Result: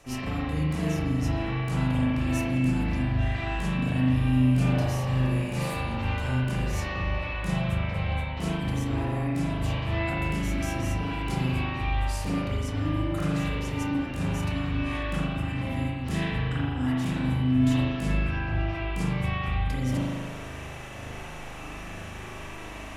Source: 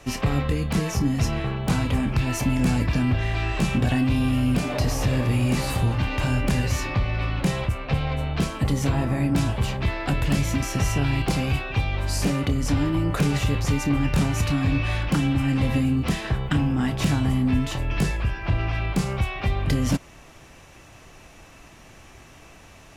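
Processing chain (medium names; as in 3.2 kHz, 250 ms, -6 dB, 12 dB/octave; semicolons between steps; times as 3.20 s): peaking EQ 10 kHz +5 dB 1.1 oct; reverse; compression 10:1, threshold -33 dBFS, peak gain reduction 16.5 dB; reverse; spring tank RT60 1.5 s, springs 39 ms, chirp 55 ms, DRR -8.5 dB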